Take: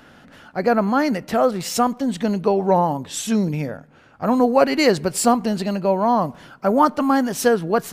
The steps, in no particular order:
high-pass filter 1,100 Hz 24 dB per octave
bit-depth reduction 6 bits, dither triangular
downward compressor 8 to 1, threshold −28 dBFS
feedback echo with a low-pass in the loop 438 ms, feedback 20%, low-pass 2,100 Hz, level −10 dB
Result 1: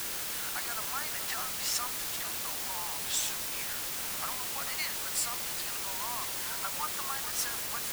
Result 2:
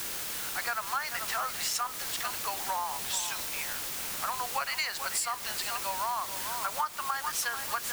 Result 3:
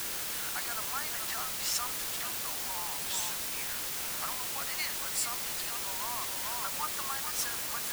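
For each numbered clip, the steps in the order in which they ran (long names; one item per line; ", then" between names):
downward compressor, then high-pass filter, then bit-depth reduction, then feedback echo with a low-pass in the loop
high-pass filter, then bit-depth reduction, then feedback echo with a low-pass in the loop, then downward compressor
feedback echo with a low-pass in the loop, then downward compressor, then high-pass filter, then bit-depth reduction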